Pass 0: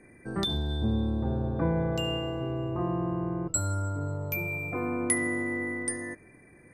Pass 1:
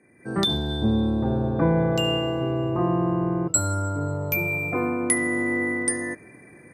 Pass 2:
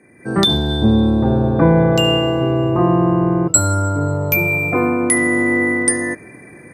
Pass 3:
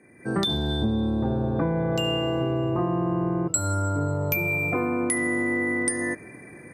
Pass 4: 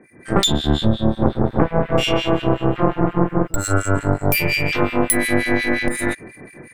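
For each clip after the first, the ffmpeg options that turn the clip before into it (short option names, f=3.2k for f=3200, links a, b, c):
-af "highpass=110,dynaudnorm=f=160:g=3:m=12dB,volume=-4.5dB"
-af "alimiter=level_in=9.5dB:limit=-1dB:release=50:level=0:latency=1,volume=-1dB"
-af "acompressor=threshold=-17dB:ratio=6,volume=-4.5dB"
-filter_complex "[0:a]aeval=exprs='0.316*(cos(1*acos(clip(val(0)/0.316,-1,1)))-cos(1*PI/2))+0.0708*(cos(6*acos(clip(val(0)/0.316,-1,1)))-cos(6*PI/2))':c=same,acrossover=split=1900[a][b];[a]aeval=exprs='val(0)*(1-1/2+1/2*cos(2*PI*5.6*n/s))':c=same[c];[b]aeval=exprs='val(0)*(1-1/2-1/2*cos(2*PI*5.6*n/s))':c=same[d];[c][d]amix=inputs=2:normalize=0,volume=9dB"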